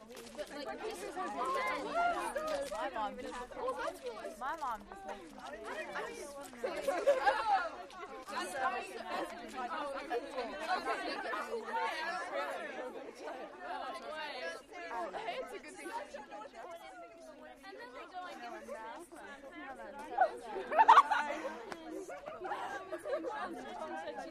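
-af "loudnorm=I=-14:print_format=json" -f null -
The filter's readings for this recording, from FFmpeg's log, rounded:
"input_i" : "-37.7",
"input_tp" : "-11.9",
"input_lra" : "13.9",
"input_thresh" : "-48.1",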